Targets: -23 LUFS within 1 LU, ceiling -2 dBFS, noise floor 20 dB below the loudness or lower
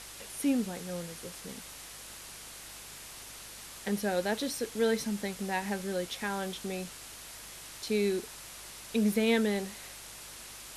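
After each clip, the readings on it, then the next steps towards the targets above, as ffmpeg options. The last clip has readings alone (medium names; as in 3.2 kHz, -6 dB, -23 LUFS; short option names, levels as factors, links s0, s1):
hum 50 Hz; highest harmonic 150 Hz; hum level -59 dBFS; noise floor -47 dBFS; noise floor target -54 dBFS; loudness -34.0 LUFS; peak level -15.0 dBFS; loudness target -23.0 LUFS
-> -af "bandreject=f=50:t=h:w=4,bandreject=f=100:t=h:w=4,bandreject=f=150:t=h:w=4"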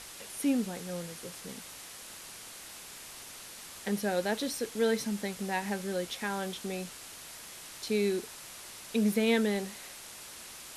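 hum not found; noise floor -47 dBFS; noise floor target -55 dBFS
-> -af "afftdn=nr=8:nf=-47"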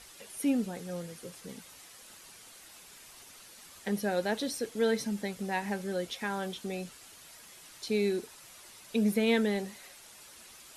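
noise floor -53 dBFS; loudness -32.5 LUFS; peak level -15.0 dBFS; loudness target -23.0 LUFS
-> -af "volume=2.99"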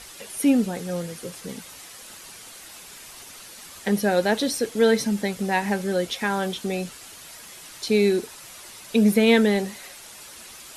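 loudness -23.0 LUFS; peak level -5.5 dBFS; noise floor -44 dBFS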